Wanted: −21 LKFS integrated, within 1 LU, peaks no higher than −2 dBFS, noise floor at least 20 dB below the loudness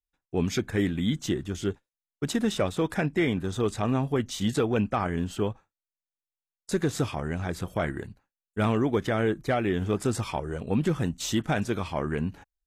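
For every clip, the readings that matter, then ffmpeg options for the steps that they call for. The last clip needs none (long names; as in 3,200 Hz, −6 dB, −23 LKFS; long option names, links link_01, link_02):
integrated loudness −28.5 LKFS; sample peak −14.5 dBFS; target loudness −21.0 LKFS
→ -af "volume=7.5dB"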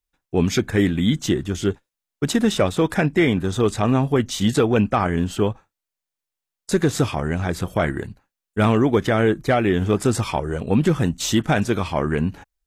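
integrated loudness −21.0 LKFS; sample peak −7.0 dBFS; background noise floor −86 dBFS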